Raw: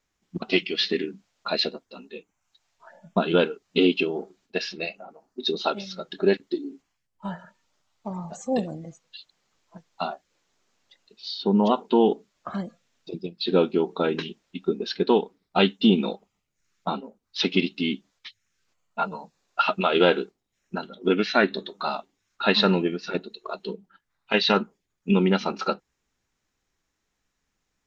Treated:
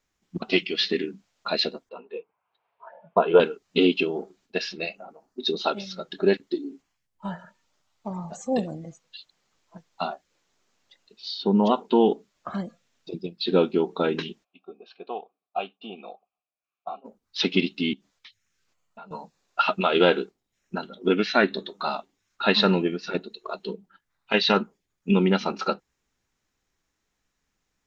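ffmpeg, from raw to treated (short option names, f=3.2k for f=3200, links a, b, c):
-filter_complex "[0:a]asettb=1/sr,asplit=3[a][b][c];[a]atrim=end=1.894[d];[b]atrim=start=1.89:end=3.4,asetpts=PTS-STARTPTS,afade=t=in:d=0.004:c=qsin,afade=t=out:st=1.506:d=0.004:c=qsin,highpass=180,equalizer=f=200:t=q:w=4:g=-7,equalizer=f=280:t=q:w=4:g=-10,equalizer=f=460:t=q:w=4:g=9,equalizer=f=700:t=q:w=4:g=4,equalizer=f=1k:t=q:w=4:g=8,equalizer=f=1.9k:t=q:w=4:g=-6,lowpass=f=2.6k:w=0.5412,lowpass=f=2.6k:w=1.3066[e];[c]atrim=start=3.396[f];[d][e]acrossfade=d=0.004:c1=hsin:c2=qsin[g];[g][f]acrossfade=d=0.004:c1=qsin:c2=hsin,asplit=3[h][i][j];[h]afade=t=out:st=14.43:d=0.02[k];[i]asplit=3[l][m][n];[l]bandpass=f=730:t=q:w=8,volume=0dB[o];[m]bandpass=f=1.09k:t=q:w=8,volume=-6dB[p];[n]bandpass=f=2.44k:t=q:w=8,volume=-9dB[q];[o][p][q]amix=inputs=3:normalize=0,afade=t=in:st=14.43:d=0.02,afade=t=out:st=17.04:d=0.02[r];[j]afade=t=in:st=17.04:d=0.02[s];[k][r][s]amix=inputs=3:normalize=0,asettb=1/sr,asplit=3[t][u][v];[t]atrim=end=17.934[w];[u]atrim=start=17.93:end=19.11,asetpts=PTS-STARTPTS,afade=t=in:d=0.004:c=qsin,afade=t=out:st=1.176:d=0.004:c=qsin,acompressor=threshold=-44dB:ratio=4:attack=3.2:release=140:knee=1:detection=peak[x];[v]atrim=start=19.106[y];[w][x]acrossfade=d=0.004:c1=hsin:c2=qsin[z];[z][y]acrossfade=d=0.004:c1=qsin:c2=hsin"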